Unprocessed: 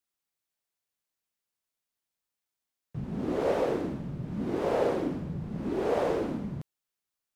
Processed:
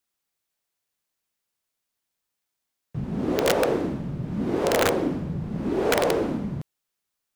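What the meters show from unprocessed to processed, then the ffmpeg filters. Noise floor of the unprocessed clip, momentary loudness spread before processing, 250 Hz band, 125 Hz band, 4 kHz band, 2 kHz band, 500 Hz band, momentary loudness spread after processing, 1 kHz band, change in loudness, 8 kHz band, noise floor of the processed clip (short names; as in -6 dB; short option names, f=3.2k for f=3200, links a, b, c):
under -85 dBFS, 11 LU, +5.5 dB, +5.5 dB, +15.0 dB, +12.0 dB, +5.0 dB, 11 LU, +6.0 dB, +5.5 dB, n/a, -83 dBFS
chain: -af "aeval=exprs='(mod(8.41*val(0)+1,2)-1)/8.41':c=same,volume=5.5dB"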